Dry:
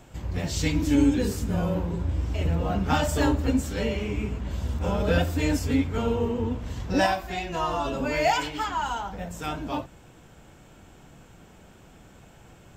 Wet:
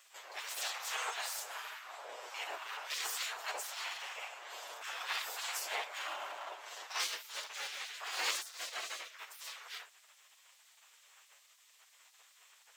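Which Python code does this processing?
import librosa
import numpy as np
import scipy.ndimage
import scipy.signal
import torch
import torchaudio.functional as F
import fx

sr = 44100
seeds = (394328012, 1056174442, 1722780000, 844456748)

y = fx.lower_of_two(x, sr, delay_ms=8.3)
y = fx.spec_gate(y, sr, threshold_db=-20, keep='weak')
y = scipy.signal.sosfilt(scipy.signal.butter(4, 510.0, 'highpass', fs=sr, output='sos'), y)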